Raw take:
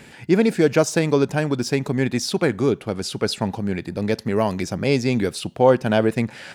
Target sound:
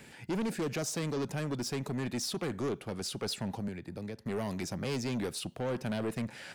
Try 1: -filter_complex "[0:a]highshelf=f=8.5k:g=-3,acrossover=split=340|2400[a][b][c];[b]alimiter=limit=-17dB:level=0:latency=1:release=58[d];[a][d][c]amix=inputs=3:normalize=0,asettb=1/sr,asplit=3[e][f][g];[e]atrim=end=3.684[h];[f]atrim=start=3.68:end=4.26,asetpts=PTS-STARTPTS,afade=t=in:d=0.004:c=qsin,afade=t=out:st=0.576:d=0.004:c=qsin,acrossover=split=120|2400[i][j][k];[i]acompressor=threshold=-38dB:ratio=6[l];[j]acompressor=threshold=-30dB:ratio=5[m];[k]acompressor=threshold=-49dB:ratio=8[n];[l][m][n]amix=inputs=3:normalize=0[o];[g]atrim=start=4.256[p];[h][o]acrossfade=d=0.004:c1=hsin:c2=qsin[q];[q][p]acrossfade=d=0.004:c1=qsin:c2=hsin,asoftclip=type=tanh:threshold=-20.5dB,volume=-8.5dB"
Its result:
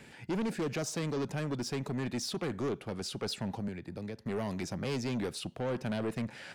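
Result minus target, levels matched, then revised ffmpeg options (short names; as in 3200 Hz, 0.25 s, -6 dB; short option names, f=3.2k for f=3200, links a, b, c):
8000 Hz band -2.5 dB
-filter_complex "[0:a]highshelf=f=8.5k:g=6,acrossover=split=340|2400[a][b][c];[b]alimiter=limit=-17dB:level=0:latency=1:release=58[d];[a][d][c]amix=inputs=3:normalize=0,asettb=1/sr,asplit=3[e][f][g];[e]atrim=end=3.684[h];[f]atrim=start=3.68:end=4.26,asetpts=PTS-STARTPTS,afade=t=in:d=0.004:c=qsin,afade=t=out:st=0.576:d=0.004:c=qsin,acrossover=split=120|2400[i][j][k];[i]acompressor=threshold=-38dB:ratio=6[l];[j]acompressor=threshold=-30dB:ratio=5[m];[k]acompressor=threshold=-49dB:ratio=8[n];[l][m][n]amix=inputs=3:normalize=0[o];[g]atrim=start=4.256[p];[h][o]acrossfade=d=0.004:c1=hsin:c2=qsin[q];[q][p]acrossfade=d=0.004:c1=qsin:c2=hsin,asoftclip=type=tanh:threshold=-20.5dB,volume=-8.5dB"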